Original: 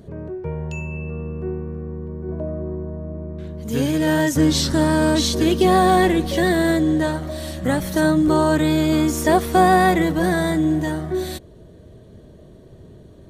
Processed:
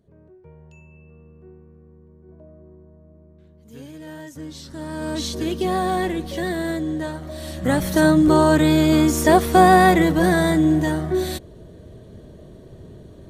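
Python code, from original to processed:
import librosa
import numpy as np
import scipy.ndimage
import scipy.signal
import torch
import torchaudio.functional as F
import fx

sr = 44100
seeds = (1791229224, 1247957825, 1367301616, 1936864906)

y = fx.gain(x, sr, db=fx.line((4.63, -19.0), (5.22, -7.0), (7.14, -7.0), (7.82, 2.0)))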